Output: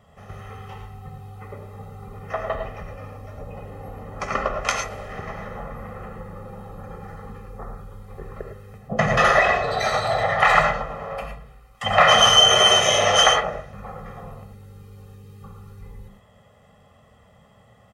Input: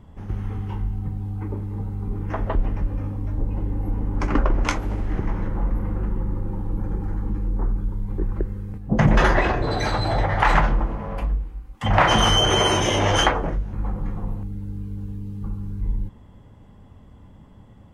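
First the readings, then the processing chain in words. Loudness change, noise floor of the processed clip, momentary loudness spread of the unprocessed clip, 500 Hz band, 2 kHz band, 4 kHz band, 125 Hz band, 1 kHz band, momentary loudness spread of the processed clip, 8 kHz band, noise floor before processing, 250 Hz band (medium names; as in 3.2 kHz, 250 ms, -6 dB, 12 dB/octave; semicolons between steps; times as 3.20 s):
+6.5 dB, -54 dBFS, 14 LU, +3.0 dB, +4.5 dB, +7.0 dB, -9.5 dB, +3.0 dB, 23 LU, +6.5 dB, -47 dBFS, -10.0 dB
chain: high-pass 600 Hz 6 dB/octave; comb 1.6 ms, depth 93%; gated-style reverb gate 130 ms rising, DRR 4 dB; trim +1 dB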